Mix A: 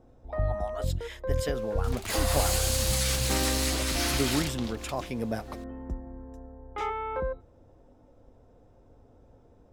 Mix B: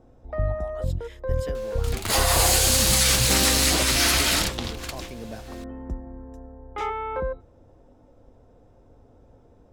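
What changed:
speech −6.5 dB
first sound +3.0 dB
second sound +9.5 dB

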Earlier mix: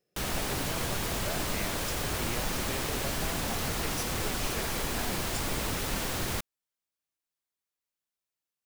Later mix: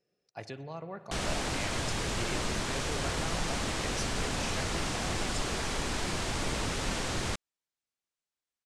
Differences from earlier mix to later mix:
background: entry +0.95 s
master: add low-pass filter 8,700 Hz 24 dB per octave

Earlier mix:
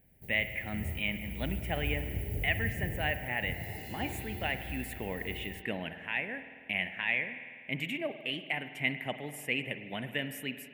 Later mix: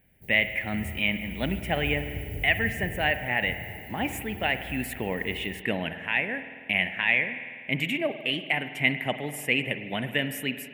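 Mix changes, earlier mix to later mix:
speech +7.5 dB
second sound: add high-frequency loss of the air 400 metres

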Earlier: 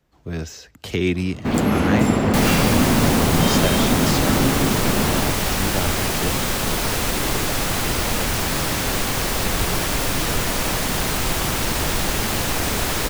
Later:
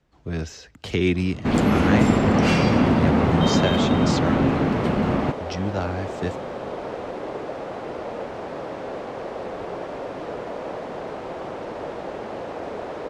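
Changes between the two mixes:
second sound: add resonant band-pass 540 Hz, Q 1.8
master: add high-frequency loss of the air 58 metres

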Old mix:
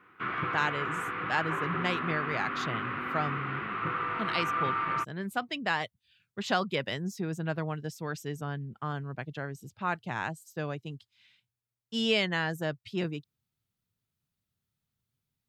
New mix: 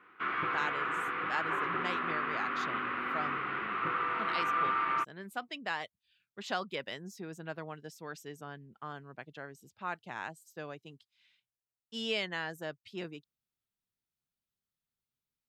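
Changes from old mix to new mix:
speech −6.0 dB
master: add parametric band 110 Hz −11.5 dB 1.6 octaves

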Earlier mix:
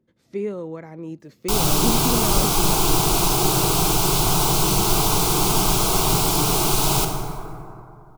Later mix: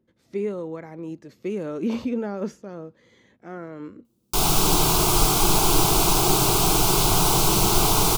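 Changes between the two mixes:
background: entry +2.85 s
master: add parametric band 150 Hz −3.5 dB 0.36 octaves

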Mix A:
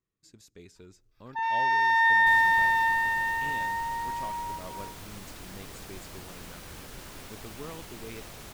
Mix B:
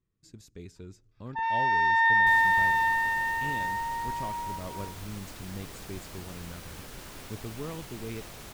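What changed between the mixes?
speech: add low-shelf EQ 270 Hz +11 dB
first sound: add high-frequency loss of the air 90 metres

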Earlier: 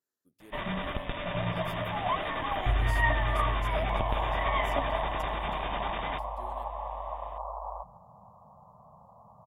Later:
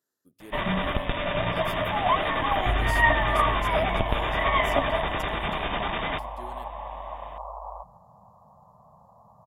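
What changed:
speech +7.5 dB
first sound +7.0 dB

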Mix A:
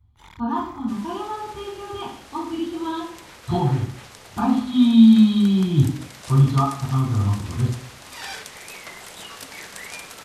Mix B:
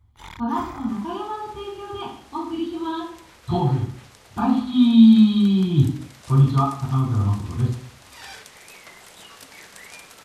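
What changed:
first sound +7.0 dB
second sound −6.0 dB

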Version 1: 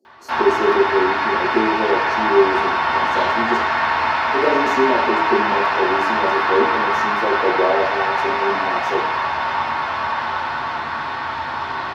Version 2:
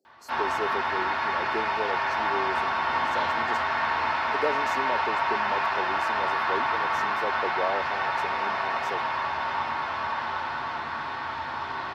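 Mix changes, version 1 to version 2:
speech: send off
background −7.5 dB

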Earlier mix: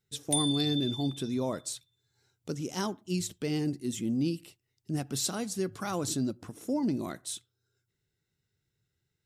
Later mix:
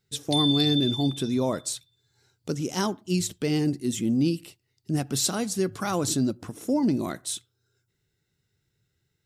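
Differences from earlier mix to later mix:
speech +6.0 dB
background: add low-pass with resonance 4,600 Hz, resonance Q 9.1

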